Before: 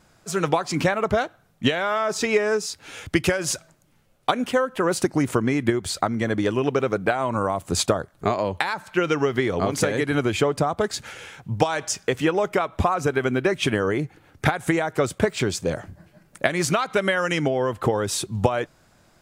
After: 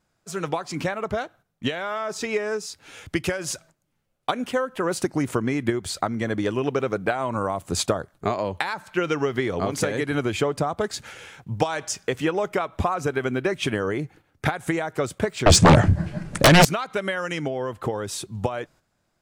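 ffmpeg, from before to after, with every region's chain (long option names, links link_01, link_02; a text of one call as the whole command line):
ffmpeg -i in.wav -filter_complex "[0:a]asettb=1/sr,asplit=3[link_01][link_02][link_03];[link_01]atrim=end=15.464[link_04];[link_02]atrim=start=15.46:end=16.65,asetpts=PTS-STARTPTS,afade=type=in:duration=0.004:curve=qsin,afade=type=out:start_time=1.186:duration=0.004:curve=qsin,lowpass=frequency=9700:width=0.5412,lowpass=frequency=9700:width=1.3066,bass=frequency=250:gain=8,treble=frequency=4000:gain=-3,aeval=exprs='0.631*sin(PI/2*7.08*val(0)/0.631)':channel_layout=same[link_05];[link_03]atrim=start=16.646[link_06];[link_04][link_05]acrossfade=duration=0.004:curve1=hsin:curve2=qsin[link_07];[link_07][link_06]acrossfade=duration=0.004:curve1=qsin:curve2=hsin,agate=range=-9dB:threshold=-45dB:ratio=16:detection=peak,dynaudnorm=framelen=660:gausssize=13:maxgain=11.5dB,volume=-5.5dB" out.wav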